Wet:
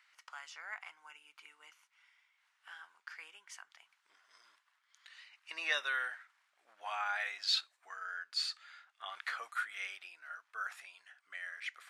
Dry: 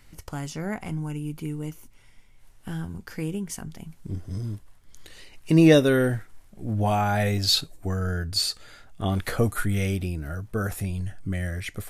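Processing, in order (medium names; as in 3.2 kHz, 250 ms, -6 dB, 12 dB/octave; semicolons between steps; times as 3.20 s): high-pass 1.2 kHz 24 dB/octave; tape spacing loss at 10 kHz 23 dB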